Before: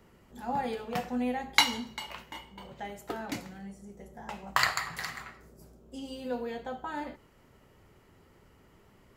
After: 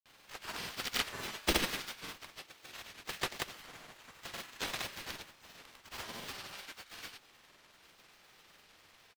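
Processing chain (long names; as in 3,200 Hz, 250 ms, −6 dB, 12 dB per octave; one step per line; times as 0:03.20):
gate on every frequency bin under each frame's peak −30 dB weak
high-shelf EQ 3,400 Hz +10 dB
sample-rate reduction 9,100 Hz, jitter 0%
pitch-shifted copies added −7 semitones 0 dB, +3 semitones −5 dB
granular cloud, pitch spread up and down by 0 semitones
level +6 dB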